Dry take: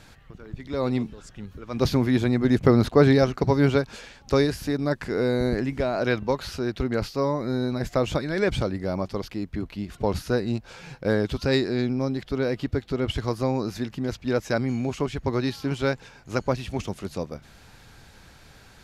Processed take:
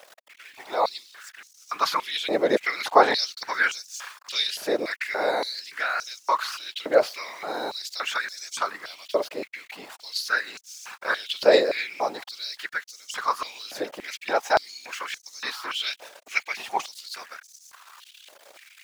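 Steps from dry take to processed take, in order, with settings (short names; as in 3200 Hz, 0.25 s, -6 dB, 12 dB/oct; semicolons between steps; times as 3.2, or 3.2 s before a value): sample gate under -44.5 dBFS; whisperiser; stepped high-pass 3.5 Hz 580–6100 Hz; gain +3 dB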